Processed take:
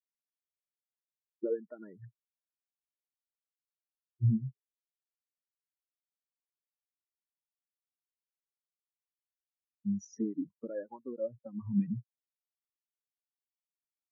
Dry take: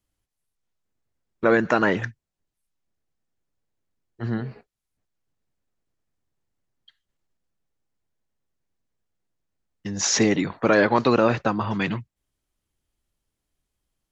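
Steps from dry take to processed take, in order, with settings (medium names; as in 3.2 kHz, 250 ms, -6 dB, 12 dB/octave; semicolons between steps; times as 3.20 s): compression 10:1, threshold -26 dBFS, peak gain reduction 13 dB; spectral contrast expander 4:1; trim -5 dB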